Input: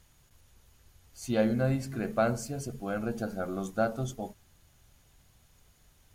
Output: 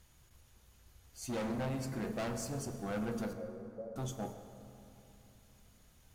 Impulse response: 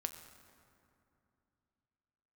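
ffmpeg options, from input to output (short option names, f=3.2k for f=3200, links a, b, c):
-filter_complex "[0:a]volume=32.5dB,asoftclip=hard,volume=-32.5dB,asettb=1/sr,asplit=3[a][b][c];[a]atrim=end=3.334[d];[b]atrim=start=3.33:end=3.96,asetpts=PTS-STARTPTS,afade=t=in:d=0.004:c=qsin,afade=t=out:st=0.626:d=0.004:c=qsin,asuperpass=centerf=490:order=4:qfactor=3.5[e];[c]atrim=start=3.956[f];[d][e]acrossfade=d=0.004:c1=hsin:c2=qsin[g];[g][f]acrossfade=d=0.004:c1=qsin:c2=hsin[h];[1:a]atrim=start_sample=2205,asetrate=37926,aresample=44100[i];[h][i]afir=irnorm=-1:irlink=0,volume=-1.5dB"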